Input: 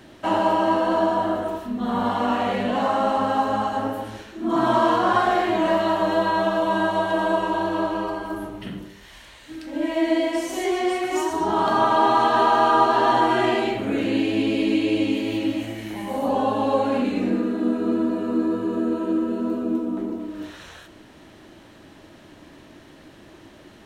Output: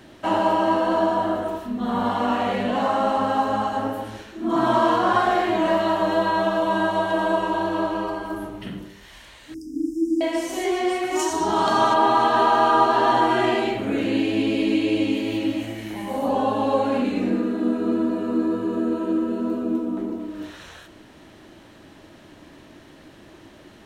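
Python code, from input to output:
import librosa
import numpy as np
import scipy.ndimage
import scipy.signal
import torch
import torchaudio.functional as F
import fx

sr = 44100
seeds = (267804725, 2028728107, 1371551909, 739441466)

y = fx.brickwall_bandstop(x, sr, low_hz=460.0, high_hz=4800.0, at=(9.54, 10.21))
y = fx.peak_eq(y, sr, hz=6300.0, db=9.5, octaves=1.6, at=(11.19, 11.94))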